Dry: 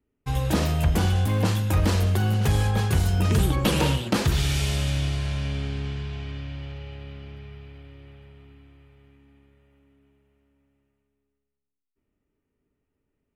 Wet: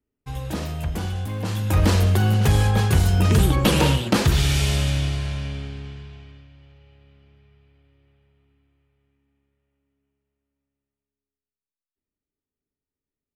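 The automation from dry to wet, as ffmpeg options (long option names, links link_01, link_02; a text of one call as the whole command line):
ffmpeg -i in.wav -af "volume=4dB,afade=type=in:start_time=1.44:duration=0.4:silence=0.334965,afade=type=out:start_time=4.75:duration=0.97:silence=0.398107,afade=type=out:start_time=5.72:duration=0.77:silence=0.298538" out.wav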